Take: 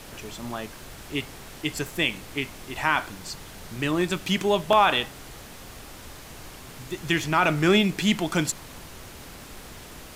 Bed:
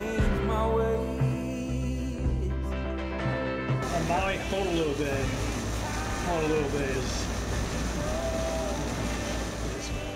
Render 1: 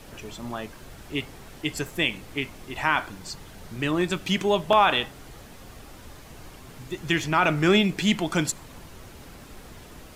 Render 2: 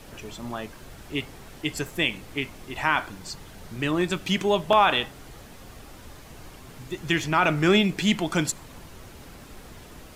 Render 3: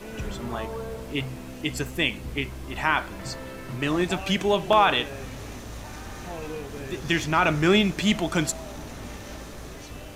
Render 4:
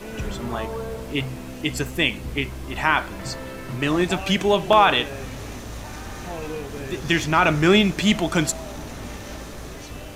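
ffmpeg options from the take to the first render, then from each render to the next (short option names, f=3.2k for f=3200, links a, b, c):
-af "afftdn=nr=6:nf=-44"
-af anull
-filter_complex "[1:a]volume=-8.5dB[a];[0:a][a]amix=inputs=2:normalize=0"
-af "volume=3.5dB"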